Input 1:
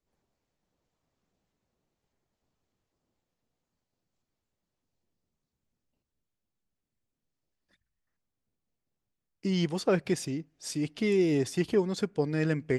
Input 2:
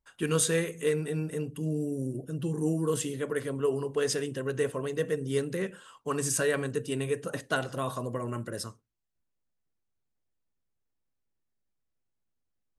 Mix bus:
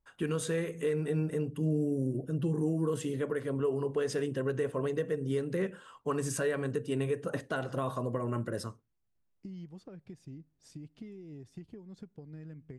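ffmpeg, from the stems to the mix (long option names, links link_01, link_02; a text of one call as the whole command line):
ffmpeg -i stem1.wav -i stem2.wav -filter_complex "[0:a]acompressor=threshold=-35dB:ratio=16,bass=frequency=250:gain=12,treble=frequency=4000:gain=4,volume=-13.5dB[link_01];[1:a]volume=2dB[link_02];[link_01][link_02]amix=inputs=2:normalize=0,highshelf=frequency=2700:gain=-10.5,alimiter=limit=-22dB:level=0:latency=1:release=223" out.wav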